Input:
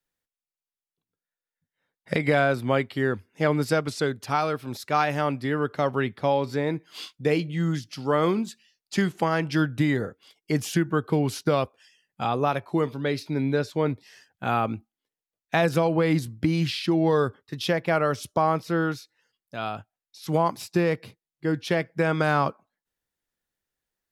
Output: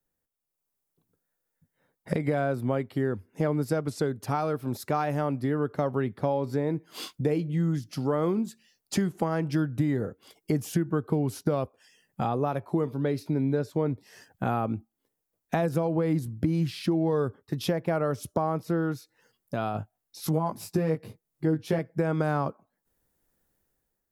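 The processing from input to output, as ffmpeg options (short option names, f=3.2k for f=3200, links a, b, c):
-filter_complex "[0:a]asettb=1/sr,asplit=3[a][b][c];[a]atrim=end=19.734[d];[b]atrim=start=19.73:end=21.79,asetpts=PTS-STARTPTS,afade=t=in:d=0.004:c=qsin,afade=t=out:st=2.056:d=0.004:c=qsin,asplit=2[e][f];[f]adelay=19,volume=-3dB[g];[e][g]amix=inputs=2:normalize=0,atrim=end_sample=90846[h];[c]atrim=start=21.786[i];[d][h]acrossfade=d=0.004:c1=hsin:c2=qsin[j];[j][i]acrossfade=d=0.004:c1=qsin:c2=hsin,dynaudnorm=f=150:g=7:m=9dB,equalizer=f=3.2k:t=o:w=2.8:g=-13,acompressor=threshold=-37dB:ratio=2.5,volume=6dB"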